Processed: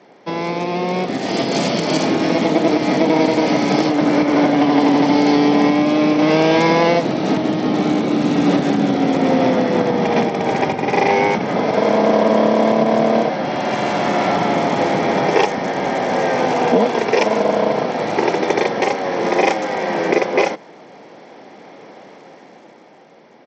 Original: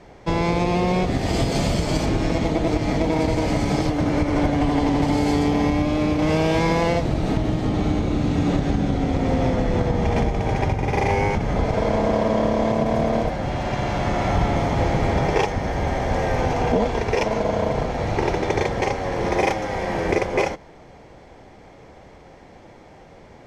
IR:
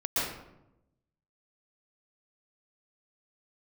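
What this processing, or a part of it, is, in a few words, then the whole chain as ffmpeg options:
Bluetooth headset: -af "highpass=f=190:w=0.5412,highpass=f=190:w=1.3066,dynaudnorm=f=160:g=17:m=2.99,aresample=16000,aresample=44100" -ar 32000 -c:a sbc -b:a 64k

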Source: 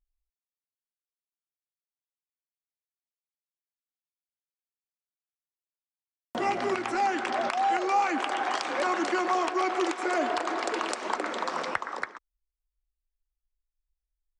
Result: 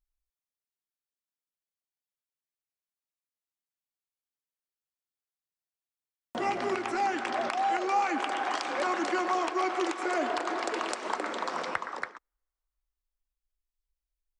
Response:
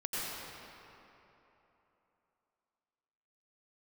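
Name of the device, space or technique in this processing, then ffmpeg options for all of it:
keyed gated reverb: -filter_complex "[0:a]asplit=3[s0][s1][s2];[1:a]atrim=start_sample=2205[s3];[s1][s3]afir=irnorm=-1:irlink=0[s4];[s2]apad=whole_len=634901[s5];[s4][s5]sidechaingate=range=0.00501:threshold=0.02:ratio=16:detection=peak,volume=0.15[s6];[s0][s6]amix=inputs=2:normalize=0,volume=0.708"

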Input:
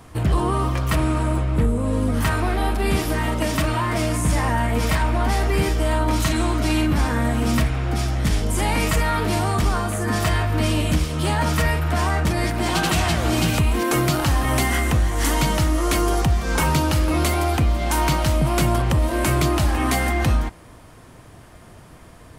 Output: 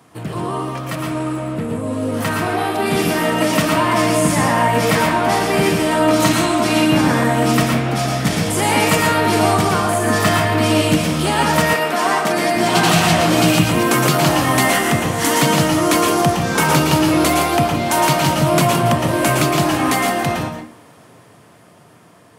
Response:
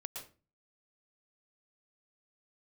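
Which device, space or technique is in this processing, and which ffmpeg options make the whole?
far laptop microphone: -filter_complex "[1:a]atrim=start_sample=2205[s0];[0:a][s0]afir=irnorm=-1:irlink=0,highpass=f=130:w=0.5412,highpass=f=130:w=1.3066,dynaudnorm=f=460:g=11:m=2.99,asettb=1/sr,asplit=3[s1][s2][s3];[s1]atrim=end=11.734[s4];[s2]atrim=start=11.73:end=12.56,asetpts=PTS-STARTPTS,afade=t=in:d=0.004:c=qsin,afade=t=out:st=0.826:d=0.004:c=qsin,highpass=260[s5];[s3]atrim=start=12.556[s6];[s4][s5]acrossfade=d=0.004:c1=hsin:c2=qsin[s7];[s7][s6]acrossfade=d=0.004:c1=qsin:c2=hsin,volume=1.19"

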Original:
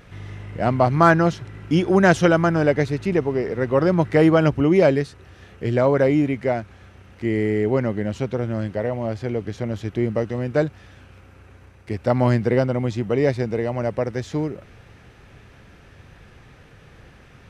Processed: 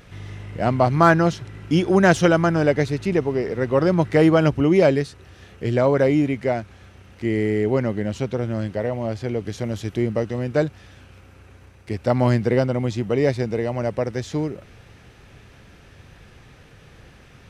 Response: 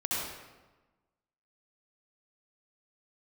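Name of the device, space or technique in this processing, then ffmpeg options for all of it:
exciter from parts: -filter_complex "[0:a]asettb=1/sr,asplit=3[s0][s1][s2];[s0]atrim=end=9.454[s3];[s1]atrim=start=9.45:end=10.03,asetpts=PTS-STARTPTS,afade=t=in:d=0.004:c=qsin,afade=t=out:st=0.576:d=0.004:c=qsin,highshelf=f=5600:g=7[s4];[s2]atrim=start=10.026[s5];[s3][s4]acrossfade=d=0.004:c1=hsin:c2=qsin[s6];[s6][s5]acrossfade=d=0.004:c1=qsin:c2=hsin,asplit=2[s7][s8];[s8]highpass=2300,asoftclip=type=tanh:threshold=0.0376,volume=0.531[s9];[s7][s9]amix=inputs=2:normalize=0"

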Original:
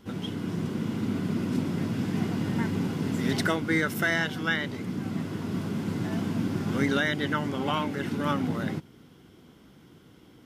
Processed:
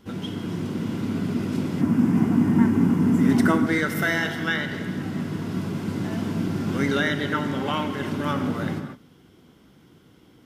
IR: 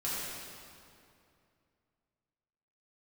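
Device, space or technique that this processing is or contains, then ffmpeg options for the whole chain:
keyed gated reverb: -filter_complex "[0:a]asplit=3[s0][s1][s2];[1:a]atrim=start_sample=2205[s3];[s1][s3]afir=irnorm=-1:irlink=0[s4];[s2]apad=whole_len=461265[s5];[s4][s5]sidechaingate=range=0.0224:threshold=0.00447:ratio=16:detection=peak,volume=0.316[s6];[s0][s6]amix=inputs=2:normalize=0,asettb=1/sr,asplit=3[s7][s8][s9];[s7]atrim=end=1.814[s10];[s8]atrim=start=1.81:end=3.67,asetpts=PTS-STARTPTS,afade=t=in:d=0.004:c=qsin,afade=t=out:st=1.856:d=0.004:c=qsin,equalizer=f=250:t=o:w=1:g=10,equalizer=f=500:t=o:w=1:g=-4,equalizer=f=1000:t=o:w=1:g=5,equalizer=f=4000:t=o:w=1:g=-10[s11];[s9]atrim=start=3.666[s12];[s10][s11]acrossfade=d=0.004:c1=hsin:c2=qsin[s13];[s13][s12]acrossfade=d=0.004:c1=qsin:c2=hsin"

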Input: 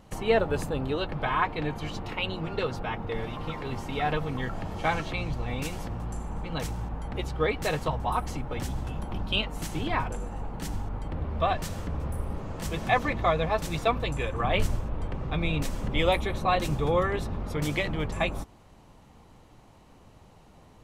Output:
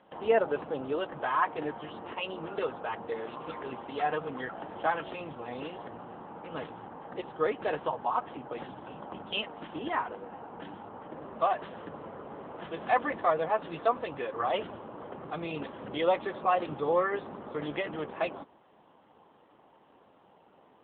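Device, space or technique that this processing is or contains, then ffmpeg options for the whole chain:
telephone: -filter_complex "[0:a]bandreject=f=2300:w=5.1,asplit=3[s0][s1][s2];[s0]afade=t=out:st=11.5:d=0.02[s3];[s1]lowpass=7900,afade=t=in:st=11.5:d=0.02,afade=t=out:st=12.69:d=0.02[s4];[s2]afade=t=in:st=12.69:d=0.02[s5];[s3][s4][s5]amix=inputs=3:normalize=0,highpass=320,lowpass=3200" -ar 8000 -c:a libopencore_amrnb -b:a 7950

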